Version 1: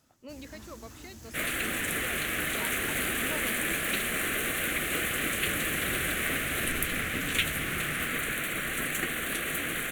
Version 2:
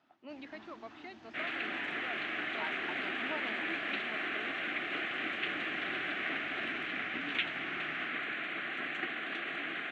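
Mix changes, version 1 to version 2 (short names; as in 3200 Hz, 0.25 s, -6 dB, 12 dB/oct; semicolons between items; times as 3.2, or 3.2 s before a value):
second sound -4.5 dB; master: add speaker cabinet 300–3400 Hz, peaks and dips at 320 Hz +3 dB, 500 Hz -10 dB, 740 Hz +6 dB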